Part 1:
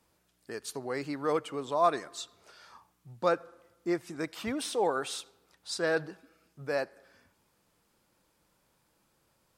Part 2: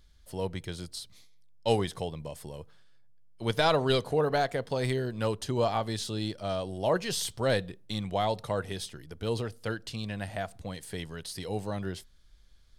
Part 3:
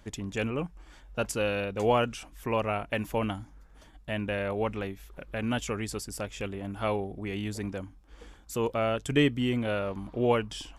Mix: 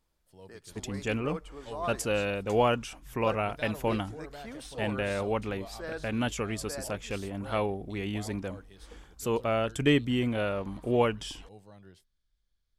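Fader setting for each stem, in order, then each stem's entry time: -10.0, -18.5, 0.0 dB; 0.00, 0.00, 0.70 s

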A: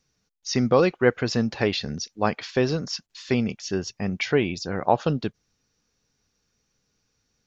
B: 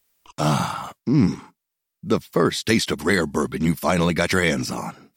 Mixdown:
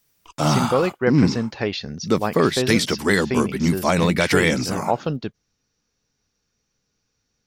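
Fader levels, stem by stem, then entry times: -1.0, +1.0 dB; 0.00, 0.00 s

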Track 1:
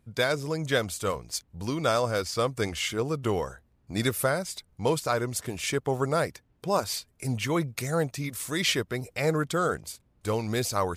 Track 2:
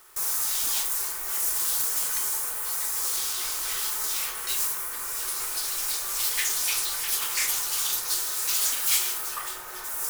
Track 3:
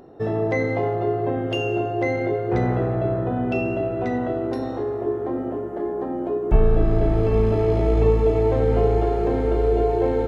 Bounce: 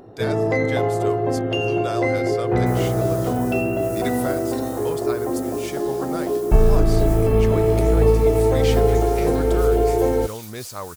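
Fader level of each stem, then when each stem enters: -5.5, -14.5, +2.0 dB; 0.00, 2.50, 0.00 s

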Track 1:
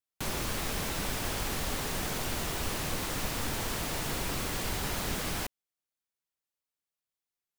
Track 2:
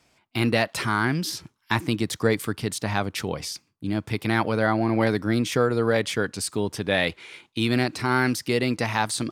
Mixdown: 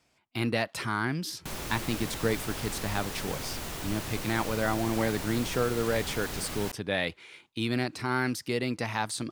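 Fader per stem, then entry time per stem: -3.5, -6.5 dB; 1.25, 0.00 s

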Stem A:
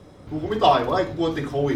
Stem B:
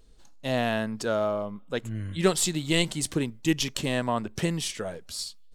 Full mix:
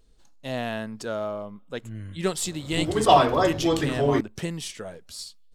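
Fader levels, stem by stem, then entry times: +0.5, -3.5 dB; 2.45, 0.00 s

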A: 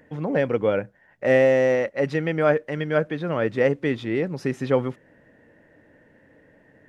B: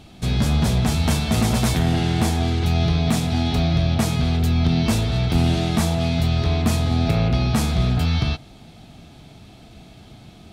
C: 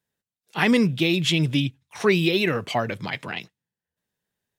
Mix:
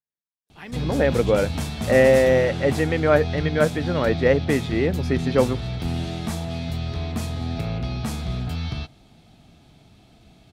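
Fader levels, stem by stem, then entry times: +2.0, -8.0, -19.5 dB; 0.65, 0.50, 0.00 s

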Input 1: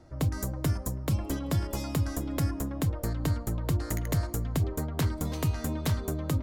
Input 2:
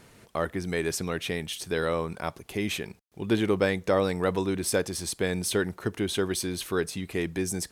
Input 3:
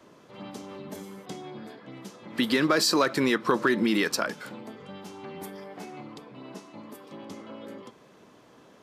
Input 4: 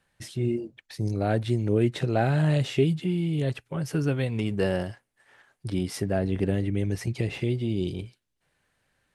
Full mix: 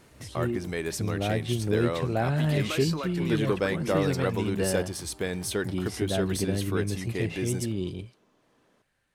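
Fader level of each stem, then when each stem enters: -18.5, -3.0, -12.0, -3.0 dB; 0.00, 0.00, 0.00, 0.00 s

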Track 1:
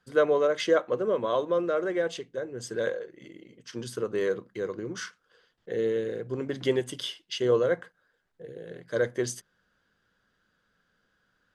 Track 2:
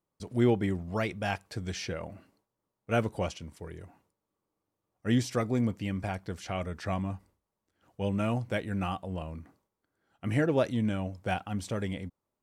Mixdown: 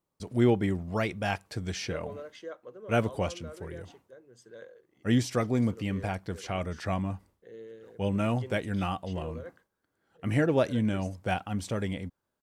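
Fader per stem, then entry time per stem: -18.5, +1.5 dB; 1.75, 0.00 s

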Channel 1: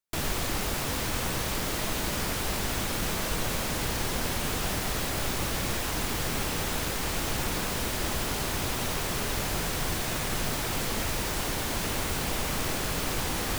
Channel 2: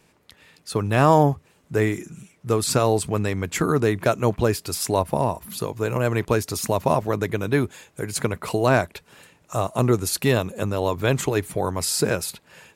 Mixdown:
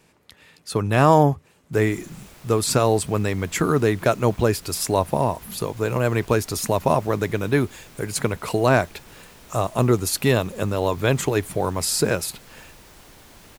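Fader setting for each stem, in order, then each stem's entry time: -17.5, +1.0 dB; 1.60, 0.00 s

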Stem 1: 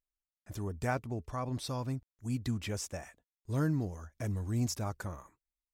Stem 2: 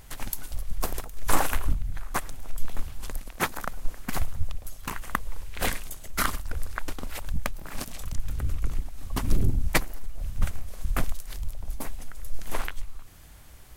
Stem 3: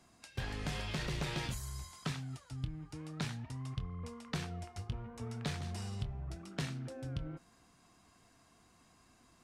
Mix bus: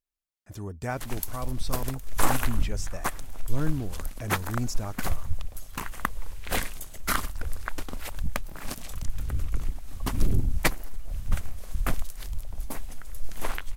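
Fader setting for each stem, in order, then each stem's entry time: +1.0 dB, -0.5 dB, off; 0.00 s, 0.90 s, off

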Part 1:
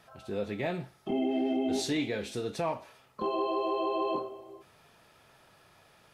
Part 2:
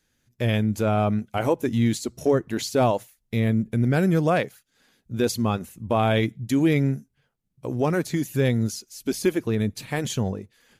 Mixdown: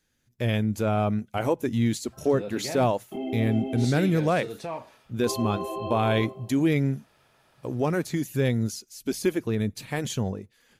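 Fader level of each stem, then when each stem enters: -2.5, -2.5 dB; 2.05, 0.00 s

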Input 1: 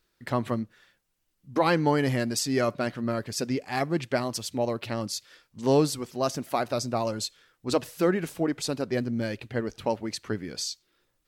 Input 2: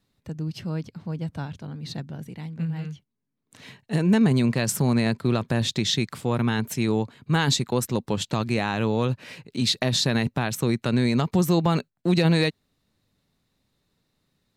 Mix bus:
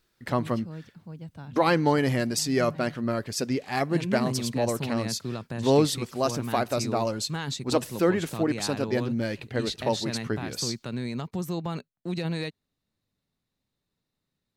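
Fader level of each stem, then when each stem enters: +1.0, -10.5 dB; 0.00, 0.00 s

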